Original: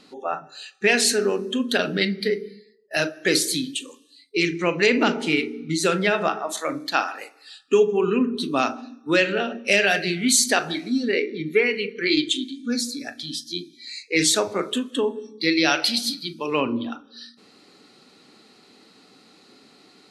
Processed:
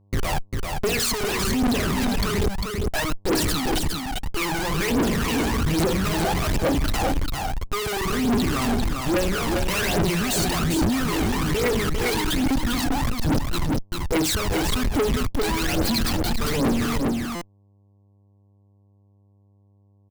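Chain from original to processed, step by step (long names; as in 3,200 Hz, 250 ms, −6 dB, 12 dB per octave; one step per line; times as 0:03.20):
adaptive Wiener filter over 25 samples
high-pass filter 53 Hz 6 dB per octave
mains-hum notches 60/120/180/240/300/360 Hz
in parallel at −2.5 dB: downward compressor 6 to 1, threshold −28 dBFS, peak gain reduction 14 dB
on the sum: comparator with hysteresis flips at −31.5 dBFS
phase shifter 1.2 Hz, delay 1.4 ms, feedback 73%
on a send: single-tap delay 399 ms −5.5 dB
on the sum: soft clipping −18 dBFS, distortion −11 dB
hum with harmonics 100 Hz, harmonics 11, −58 dBFS −9 dB per octave
buffer that repeats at 0:17.35, samples 256, times 10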